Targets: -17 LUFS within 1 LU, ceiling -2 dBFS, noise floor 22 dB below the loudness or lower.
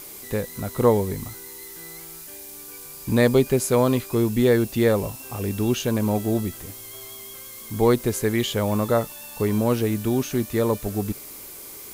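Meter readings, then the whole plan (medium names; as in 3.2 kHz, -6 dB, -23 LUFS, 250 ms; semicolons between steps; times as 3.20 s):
noise floor -40 dBFS; noise floor target -45 dBFS; loudness -23.0 LUFS; peak level -5.0 dBFS; loudness target -17.0 LUFS
-> noise print and reduce 6 dB; trim +6 dB; peak limiter -2 dBFS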